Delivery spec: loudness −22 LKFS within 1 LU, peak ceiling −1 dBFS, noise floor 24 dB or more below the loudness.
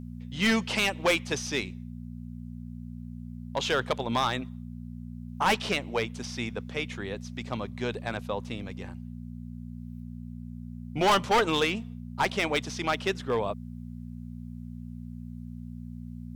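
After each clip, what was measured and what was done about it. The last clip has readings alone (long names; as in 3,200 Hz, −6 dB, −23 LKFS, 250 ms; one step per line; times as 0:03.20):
share of clipped samples 0.7%; peaks flattened at −18.5 dBFS; mains hum 60 Hz; hum harmonics up to 240 Hz; level of the hum −38 dBFS; integrated loudness −29.0 LKFS; sample peak −18.5 dBFS; target loudness −22.0 LKFS
→ clipped peaks rebuilt −18.5 dBFS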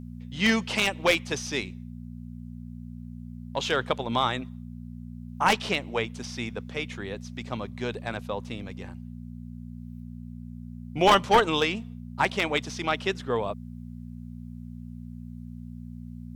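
share of clipped samples 0.0%; mains hum 60 Hz; hum harmonics up to 240 Hz; level of the hum −37 dBFS
→ hum removal 60 Hz, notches 4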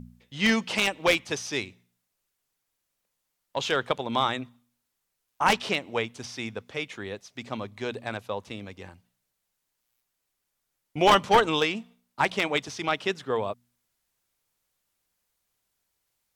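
mains hum none found; integrated loudness −27.0 LKFS; sample peak −9.0 dBFS; target loudness −22.0 LKFS
→ level +5 dB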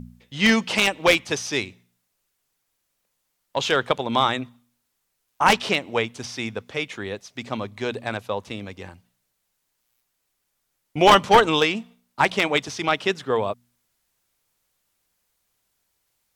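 integrated loudness −22.0 LKFS; sample peak −4.0 dBFS; background noise floor −75 dBFS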